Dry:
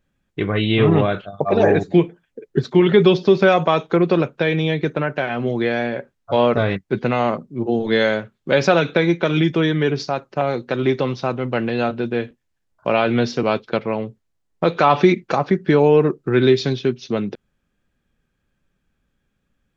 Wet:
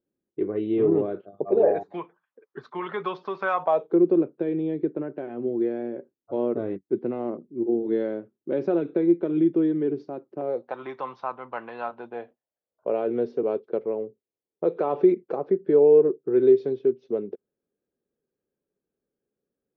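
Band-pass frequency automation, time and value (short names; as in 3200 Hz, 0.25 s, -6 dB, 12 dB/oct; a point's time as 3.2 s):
band-pass, Q 3.6
1.52 s 370 Hz
1.95 s 1100 Hz
3.56 s 1100 Hz
3.96 s 340 Hz
10.39 s 340 Hz
10.79 s 1000 Hz
11.86 s 1000 Hz
12.98 s 420 Hz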